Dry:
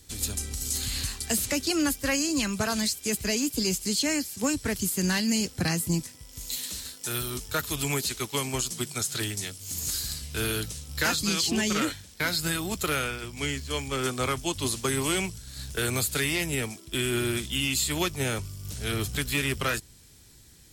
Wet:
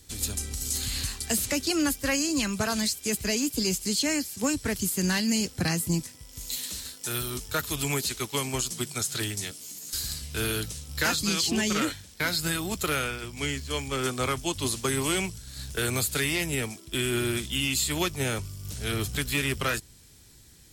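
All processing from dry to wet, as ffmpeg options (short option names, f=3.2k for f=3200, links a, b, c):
-filter_complex "[0:a]asettb=1/sr,asplit=3[a][b][c];[a]atrim=end=9.514[d];[b]atrim=start=9.51:end=9.93,asetpts=PTS-STARTPTS,afade=t=in:d=0.004:c=qsin,afade=t=out:st=0.416:d=0.004:c=qsin,highpass=f=170:w=0.5412,highpass=f=170:w=1.3066,asplit=2[e][f];[f]adelay=14,volume=-5.5dB[g];[e][g]amix=inputs=2:normalize=0,atrim=end_sample=18522,acompressor=threshold=-37dB:ratio=8:attack=3.2:release=140:knee=1:detection=peak[h];[c]atrim=start=9.926[i];[d][h]acrossfade=d=0.004:c1=hsin:c2=qsin[j];[j][i]acrossfade=d=0.004:c1=qsin:c2=hsin"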